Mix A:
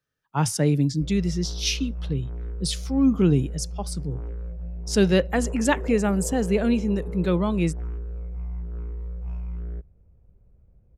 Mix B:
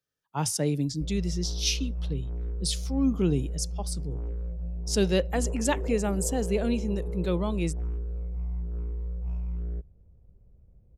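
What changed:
speech: add low-shelf EQ 360 Hz −8.5 dB
master: add parametric band 1,600 Hz −7.5 dB 1.6 octaves

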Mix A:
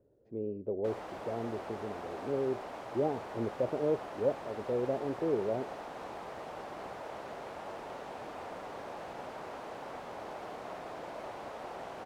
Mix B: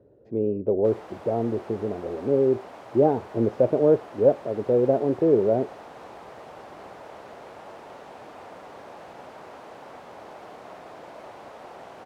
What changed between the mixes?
speech +12.0 dB
master: add high-pass filter 56 Hz

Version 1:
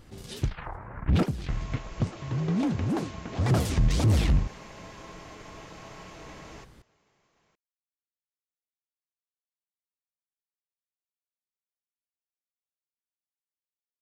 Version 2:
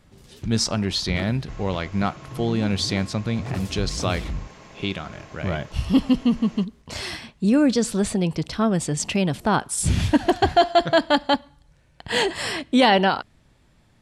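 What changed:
speech: unmuted
first sound −7.0 dB

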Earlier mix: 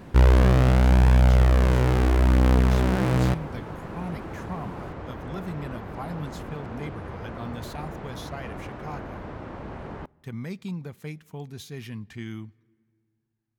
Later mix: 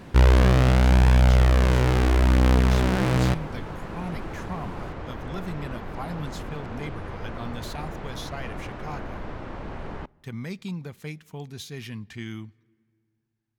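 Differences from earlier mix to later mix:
second sound: remove high-pass filter 52 Hz
master: add parametric band 4,200 Hz +4.5 dB 2.6 octaves

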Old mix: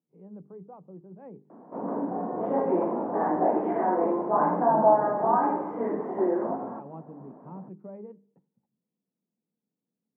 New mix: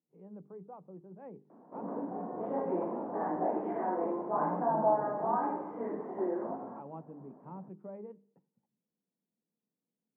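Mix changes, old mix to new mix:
speech: add low-shelf EQ 410 Hz −5.5 dB
background −8.0 dB

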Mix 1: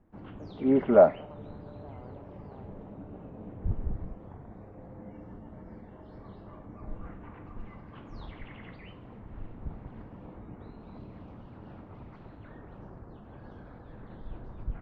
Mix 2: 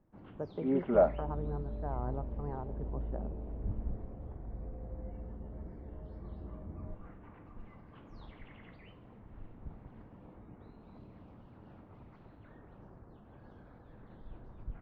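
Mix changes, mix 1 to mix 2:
speech +11.5 dB
first sound −7.5 dB
second sound: remove high-pass filter 410 Hz 24 dB per octave

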